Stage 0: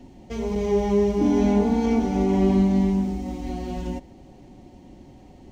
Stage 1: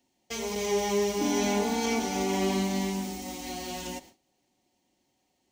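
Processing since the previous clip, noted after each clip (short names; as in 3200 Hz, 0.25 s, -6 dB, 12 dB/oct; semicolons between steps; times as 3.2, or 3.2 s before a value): gate with hold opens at -34 dBFS; tilt +4.5 dB/oct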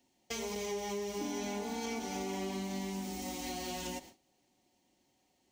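compressor 5:1, threshold -36 dBFS, peak gain reduction 12.5 dB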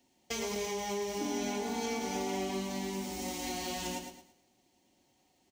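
feedback echo 0.111 s, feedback 32%, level -7.5 dB; gain +2.5 dB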